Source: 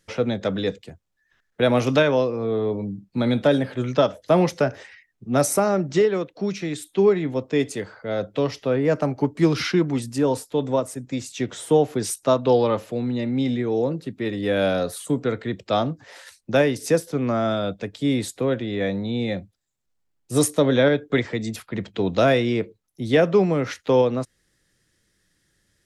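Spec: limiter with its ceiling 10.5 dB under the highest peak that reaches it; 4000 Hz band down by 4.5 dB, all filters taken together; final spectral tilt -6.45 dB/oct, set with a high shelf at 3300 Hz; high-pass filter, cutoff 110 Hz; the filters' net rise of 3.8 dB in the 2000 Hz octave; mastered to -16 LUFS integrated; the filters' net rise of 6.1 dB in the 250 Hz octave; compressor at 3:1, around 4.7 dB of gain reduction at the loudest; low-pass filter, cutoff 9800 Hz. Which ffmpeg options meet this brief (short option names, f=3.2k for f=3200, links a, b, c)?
-af "highpass=110,lowpass=9.8k,equalizer=f=250:t=o:g=7.5,equalizer=f=2k:t=o:g=7,highshelf=f=3.3k:g=-3.5,equalizer=f=4k:t=o:g=-5.5,acompressor=threshold=-16dB:ratio=3,volume=10.5dB,alimiter=limit=-7dB:level=0:latency=1"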